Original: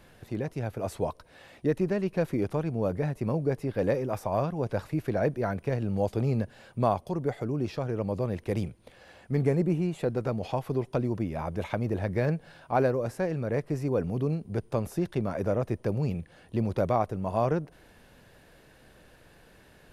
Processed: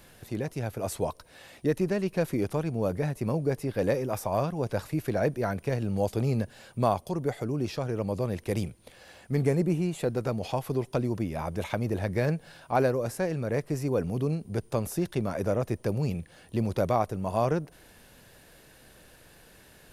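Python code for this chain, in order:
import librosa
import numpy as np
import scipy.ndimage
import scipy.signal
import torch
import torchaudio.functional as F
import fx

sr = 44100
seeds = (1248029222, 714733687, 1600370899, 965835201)

y = fx.high_shelf(x, sr, hz=4500.0, db=11.0)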